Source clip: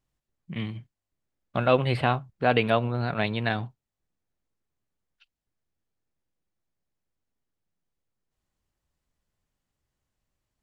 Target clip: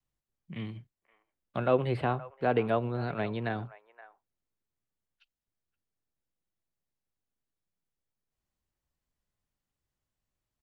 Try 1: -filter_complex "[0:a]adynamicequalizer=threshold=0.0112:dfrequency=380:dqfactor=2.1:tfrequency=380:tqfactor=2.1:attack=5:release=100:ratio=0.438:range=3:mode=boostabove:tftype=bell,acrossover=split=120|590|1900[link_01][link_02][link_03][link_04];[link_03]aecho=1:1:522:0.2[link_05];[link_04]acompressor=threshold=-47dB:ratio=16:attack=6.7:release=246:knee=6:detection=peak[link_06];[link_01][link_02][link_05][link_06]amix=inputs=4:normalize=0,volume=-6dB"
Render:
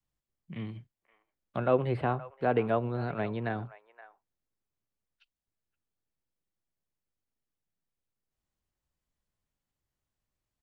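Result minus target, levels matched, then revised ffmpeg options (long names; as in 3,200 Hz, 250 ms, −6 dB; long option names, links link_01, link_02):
downward compressor: peak gain reduction +7 dB
-filter_complex "[0:a]adynamicequalizer=threshold=0.0112:dfrequency=380:dqfactor=2.1:tfrequency=380:tqfactor=2.1:attack=5:release=100:ratio=0.438:range=3:mode=boostabove:tftype=bell,acrossover=split=120|590|1900[link_01][link_02][link_03][link_04];[link_03]aecho=1:1:522:0.2[link_05];[link_04]acompressor=threshold=-39.5dB:ratio=16:attack=6.7:release=246:knee=6:detection=peak[link_06];[link_01][link_02][link_05][link_06]amix=inputs=4:normalize=0,volume=-6dB"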